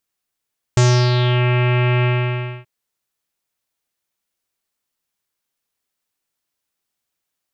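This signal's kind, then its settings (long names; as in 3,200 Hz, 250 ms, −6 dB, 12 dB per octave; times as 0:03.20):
subtractive voice square B2 24 dB per octave, low-pass 2,600 Hz, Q 3.5, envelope 1.5 octaves, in 0.66 s, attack 1.4 ms, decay 0.33 s, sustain −4.5 dB, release 0.61 s, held 1.27 s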